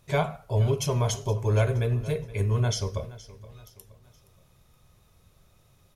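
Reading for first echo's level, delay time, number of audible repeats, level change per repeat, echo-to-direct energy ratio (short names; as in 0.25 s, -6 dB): -18.0 dB, 0.471 s, 3, -7.5 dB, -17.0 dB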